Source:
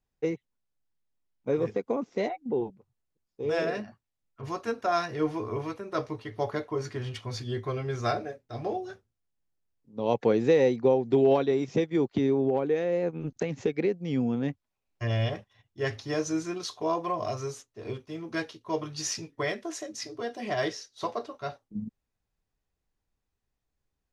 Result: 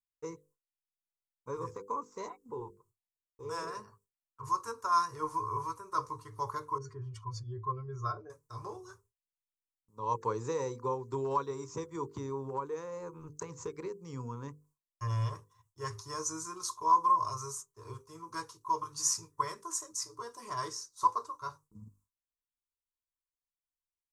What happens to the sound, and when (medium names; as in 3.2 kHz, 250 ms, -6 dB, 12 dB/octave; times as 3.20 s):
6.78–8.30 s: spectral contrast enhancement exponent 1.6
whole clip: hum notches 50/100/150/200/250/300/350/400/450/500 Hz; gate with hold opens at -54 dBFS; FFT filter 110 Hz 0 dB, 220 Hz -17 dB, 450 Hz -7 dB, 730 Hz -20 dB, 1 kHz +13 dB, 1.8 kHz -12 dB, 3.2 kHz -15 dB, 7.9 kHz +14 dB, 12 kHz +11 dB; trim -3 dB